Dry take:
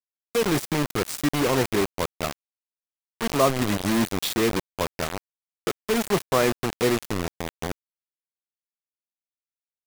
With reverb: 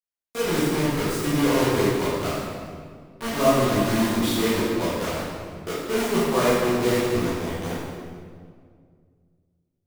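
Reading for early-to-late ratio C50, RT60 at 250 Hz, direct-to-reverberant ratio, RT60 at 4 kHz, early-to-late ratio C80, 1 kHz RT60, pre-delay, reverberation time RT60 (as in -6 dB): -2.5 dB, 2.4 s, -10.5 dB, 1.4 s, 0.0 dB, 1.8 s, 11 ms, 2.0 s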